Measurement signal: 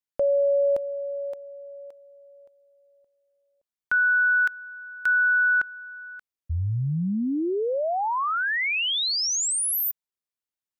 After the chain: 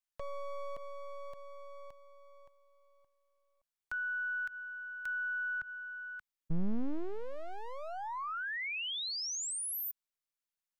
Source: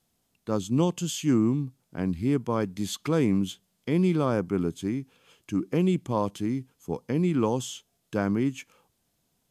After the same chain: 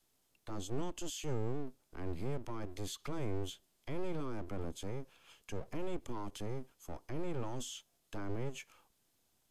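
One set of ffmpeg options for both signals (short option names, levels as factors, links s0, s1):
-filter_complex "[0:a]acrossover=split=140[s0][s1];[s1]acompressor=threshold=0.01:ratio=2.5:attack=0.46:release=106:knee=2.83:detection=peak[s2];[s0][s2]amix=inputs=2:normalize=0,acrossover=split=620|1600[s3][s4][s5];[s3]aeval=exprs='abs(val(0))':c=same[s6];[s6][s4][s5]amix=inputs=3:normalize=0,volume=0.794"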